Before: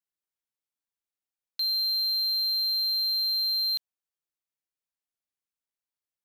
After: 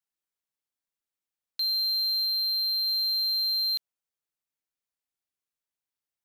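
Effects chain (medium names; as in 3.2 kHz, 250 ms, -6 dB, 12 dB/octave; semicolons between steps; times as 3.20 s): 2.25–2.87 s: peaking EQ 6.8 kHz -12 dB 0.25 oct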